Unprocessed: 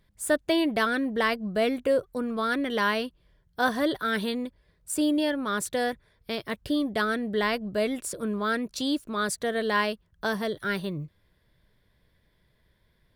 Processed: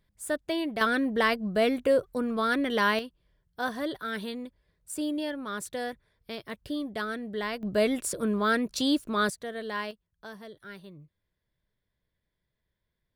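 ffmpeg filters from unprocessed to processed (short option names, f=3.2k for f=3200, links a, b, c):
-af "asetnsamples=n=441:p=0,asendcmd='0.81 volume volume 0.5dB;2.99 volume volume -6.5dB;7.63 volume volume 2dB;9.3 volume volume -8.5dB;9.91 volume volume -15.5dB',volume=-6dB"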